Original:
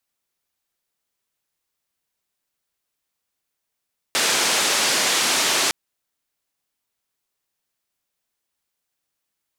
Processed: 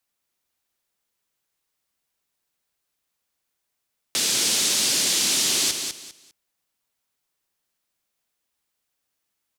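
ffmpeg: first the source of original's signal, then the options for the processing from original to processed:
-f lavfi -i "anoisesrc=color=white:duration=1.56:sample_rate=44100:seed=1,highpass=frequency=250,lowpass=frequency=7000,volume=-10.2dB"
-filter_complex "[0:a]acrossover=split=350|3000[link_01][link_02][link_03];[link_02]acompressor=threshold=-39dB:ratio=6[link_04];[link_01][link_04][link_03]amix=inputs=3:normalize=0,asplit=2[link_05][link_06];[link_06]aecho=0:1:200|400|600:0.473|0.114|0.0273[link_07];[link_05][link_07]amix=inputs=2:normalize=0"

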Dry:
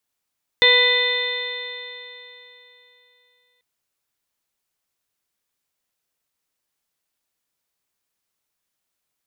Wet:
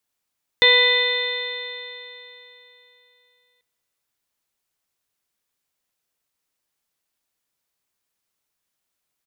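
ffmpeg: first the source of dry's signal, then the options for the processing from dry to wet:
-f lavfi -i "aevalsrc='0.119*pow(10,-3*t/3.24)*sin(2*PI*490.44*t)+0.0501*pow(10,-3*t/3.24)*sin(2*PI*983.52*t)+0.0211*pow(10,-3*t/3.24)*sin(2*PI*1481.86*t)+0.211*pow(10,-3*t/3.24)*sin(2*PI*1988.02*t)+0.0473*pow(10,-3*t/3.24)*sin(2*PI*2504.52*t)+0.0266*pow(10,-3*t/3.24)*sin(2*PI*3033.76*t)+0.211*pow(10,-3*t/3.24)*sin(2*PI*3578.07*t)+0.0596*pow(10,-3*t/3.24)*sin(2*PI*4139.64*t)':duration=2.99:sample_rate=44100"
-filter_complex "[0:a]asplit=2[link_01][link_02];[link_02]adelay=408.2,volume=-27dB,highshelf=frequency=4000:gain=-9.18[link_03];[link_01][link_03]amix=inputs=2:normalize=0"

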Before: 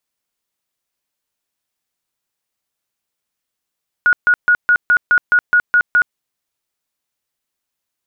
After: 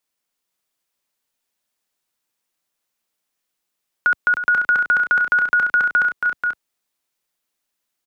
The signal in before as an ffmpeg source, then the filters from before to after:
-f lavfi -i "aevalsrc='0.398*sin(2*PI*1450*mod(t,0.21))*lt(mod(t,0.21),100/1450)':duration=2.1:sample_rate=44100"
-filter_complex "[0:a]equalizer=frequency=78:width=1.3:gain=-10,acrossover=split=420|3000[link_01][link_02][link_03];[link_02]acompressor=threshold=-15dB:ratio=6[link_04];[link_01][link_04][link_03]amix=inputs=3:normalize=0,aecho=1:1:309|486|513:0.355|0.531|0.168"

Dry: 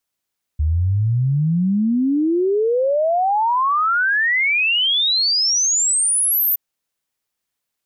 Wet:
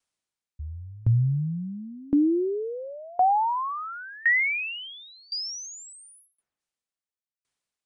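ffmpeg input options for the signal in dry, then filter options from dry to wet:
-f lavfi -i "aevalsrc='0.188*clip(min(t,5.97-t)/0.01,0,1)*sin(2*PI*73*5.97/log(14000/73)*(exp(log(14000/73)*t/5.97)-1))':duration=5.97:sample_rate=44100"
-filter_complex "[0:a]acrossover=split=2500[link_01][link_02];[link_02]acompressor=threshold=-33dB:ratio=4:attack=1:release=60[link_03];[link_01][link_03]amix=inputs=2:normalize=0,aresample=22050,aresample=44100,aeval=exprs='val(0)*pow(10,-27*if(lt(mod(0.94*n/s,1),2*abs(0.94)/1000),1-mod(0.94*n/s,1)/(2*abs(0.94)/1000),(mod(0.94*n/s,1)-2*abs(0.94)/1000)/(1-2*abs(0.94)/1000))/20)':channel_layout=same"

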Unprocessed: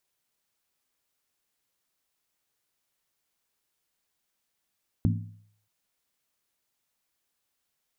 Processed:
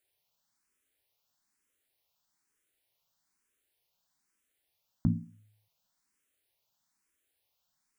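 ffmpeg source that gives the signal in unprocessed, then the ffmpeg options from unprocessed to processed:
-f lavfi -i "aevalsrc='0.1*pow(10,-3*t/0.62)*sin(2*PI*105*t)+0.0708*pow(10,-3*t/0.491)*sin(2*PI*167.4*t)+0.0501*pow(10,-3*t/0.424)*sin(2*PI*224.3*t)+0.0355*pow(10,-3*t/0.409)*sin(2*PI*241.1*t)+0.0251*pow(10,-3*t/0.381)*sin(2*PI*278.6*t)':duration=0.63:sample_rate=44100"
-filter_complex "[0:a]bandreject=frequency=1200:width=26,asplit=2[link_01][link_02];[link_02]asoftclip=type=hard:threshold=-22dB,volume=-11dB[link_03];[link_01][link_03]amix=inputs=2:normalize=0,asplit=2[link_04][link_05];[link_05]afreqshift=1.1[link_06];[link_04][link_06]amix=inputs=2:normalize=1"

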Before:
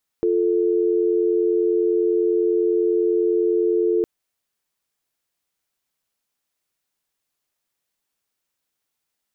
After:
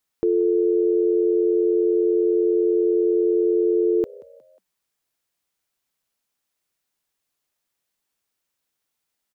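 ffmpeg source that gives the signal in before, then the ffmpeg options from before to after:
-f lavfi -i "aevalsrc='0.112*(sin(2*PI*350*t)+sin(2*PI*440*t))':duration=3.81:sample_rate=44100"
-filter_complex "[0:a]asplit=4[link_01][link_02][link_03][link_04];[link_02]adelay=180,afreqshift=60,volume=-23dB[link_05];[link_03]adelay=360,afreqshift=120,volume=-29.4dB[link_06];[link_04]adelay=540,afreqshift=180,volume=-35.8dB[link_07];[link_01][link_05][link_06][link_07]amix=inputs=4:normalize=0"

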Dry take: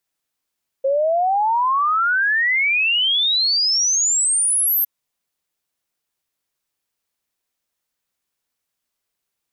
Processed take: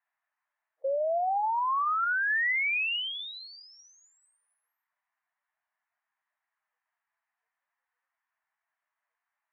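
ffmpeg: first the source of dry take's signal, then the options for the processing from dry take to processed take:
-f lavfi -i "aevalsrc='0.178*clip(min(t,4.01-t)/0.01,0,1)*sin(2*PI*530*4.01/log(13000/530)*(exp(log(13000/530)*t/4.01)-1))':duration=4.01:sample_rate=44100"
-af "highpass=frequency=410:width=0.5412,highpass=frequency=410:width=1.3066,equalizer=frequency=530:width_type=q:width=4:gain=-5,equalizer=frequency=1000:width_type=q:width=4:gain=5,equalizer=frequency=1800:width_type=q:width=4:gain=8,lowpass=frequency=2000:width=0.5412,lowpass=frequency=2000:width=1.3066,areverse,acompressor=threshold=-26dB:ratio=10,areverse" -ar 44100 -c:a libvorbis -b:a 32k

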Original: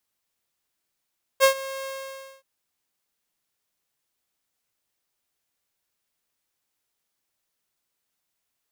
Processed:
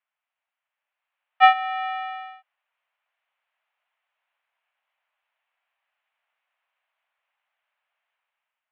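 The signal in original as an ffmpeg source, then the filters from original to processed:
-f lavfi -i "aevalsrc='0.335*(2*mod(538*t,1)-1)':duration=1.026:sample_rate=44100,afade=type=in:duration=0.039,afade=type=out:start_time=0.039:duration=0.097:silence=0.112,afade=type=out:start_time=0.45:duration=0.576"
-af "dynaudnorm=framelen=680:gausssize=3:maxgain=8dB,highpass=frequency=400:width_type=q:width=0.5412,highpass=frequency=400:width_type=q:width=1.307,lowpass=frequency=2700:width_type=q:width=0.5176,lowpass=frequency=2700:width_type=q:width=0.7071,lowpass=frequency=2700:width_type=q:width=1.932,afreqshift=220"

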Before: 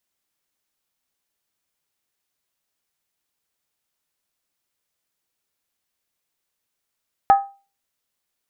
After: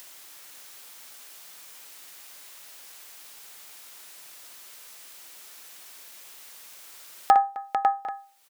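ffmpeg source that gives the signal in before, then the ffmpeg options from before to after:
-f lavfi -i "aevalsrc='0.501*pow(10,-3*t/0.33)*sin(2*PI*793*t)+0.141*pow(10,-3*t/0.261)*sin(2*PI*1264*t)+0.0398*pow(10,-3*t/0.226)*sin(2*PI*1693.8*t)+0.0112*pow(10,-3*t/0.218)*sin(2*PI*1820.7*t)+0.00316*pow(10,-3*t/0.203)*sin(2*PI*2103.8*t)':duration=0.63:sample_rate=44100"
-filter_complex "[0:a]asplit=2[link_01][link_02];[link_02]aecho=0:1:58|260|447|549|750|786:0.447|0.106|0.335|0.596|0.119|0.141[link_03];[link_01][link_03]amix=inputs=2:normalize=0,acompressor=mode=upward:threshold=-22dB:ratio=2.5,highpass=frequency=650:poles=1"

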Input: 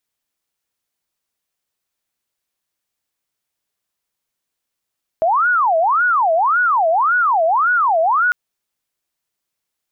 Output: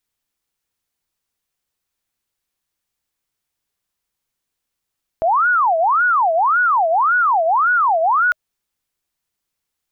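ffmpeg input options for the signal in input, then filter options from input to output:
-f lavfi -i "aevalsrc='0.251*sin(2*PI*(1056*t-414/(2*PI*1.8)*sin(2*PI*1.8*t)))':duration=3.1:sample_rate=44100"
-af "lowshelf=frequency=93:gain=9,bandreject=frequency=620:width=12"

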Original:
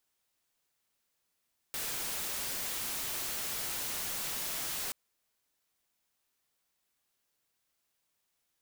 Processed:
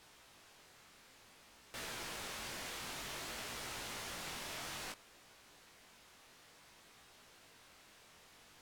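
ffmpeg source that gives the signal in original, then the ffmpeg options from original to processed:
-f lavfi -i "anoisesrc=color=white:amplitude=0.0259:duration=3.18:sample_rate=44100:seed=1"
-af "aeval=exprs='val(0)+0.5*0.00473*sgn(val(0))':channel_layout=same,aemphasis=mode=reproduction:type=50fm,flanger=delay=16.5:depth=7.5:speed=0.56"

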